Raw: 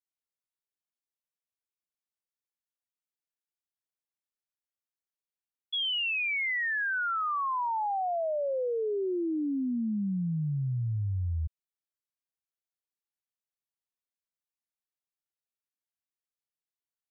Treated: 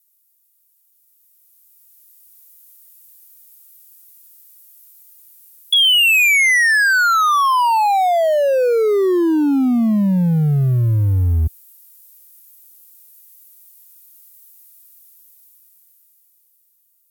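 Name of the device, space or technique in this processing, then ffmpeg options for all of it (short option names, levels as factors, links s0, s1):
FM broadcast chain: -filter_complex "[0:a]highpass=f=69:p=1,dynaudnorm=f=210:g=17:m=5.62,acrossover=split=270|1600[s0][s1][s2];[s0]acompressor=threshold=0.0891:ratio=4[s3];[s1]acompressor=threshold=0.0631:ratio=4[s4];[s2]acompressor=threshold=0.0316:ratio=4[s5];[s3][s4][s5]amix=inputs=3:normalize=0,aemphasis=mode=production:type=50fm,alimiter=limit=0.112:level=0:latency=1:release=35,asoftclip=type=hard:threshold=0.0891,lowpass=f=15000:w=0.5412,lowpass=f=15000:w=1.3066,aemphasis=mode=production:type=50fm,volume=2.66"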